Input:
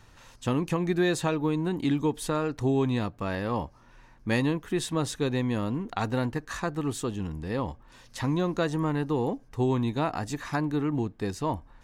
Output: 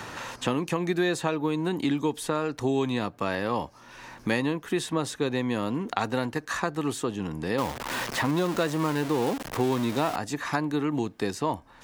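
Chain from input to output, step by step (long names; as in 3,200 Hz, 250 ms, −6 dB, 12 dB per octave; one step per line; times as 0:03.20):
0:07.58–0:10.16: converter with a step at zero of −30 dBFS
high-pass filter 270 Hz 6 dB per octave
multiband upward and downward compressor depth 70%
level +2 dB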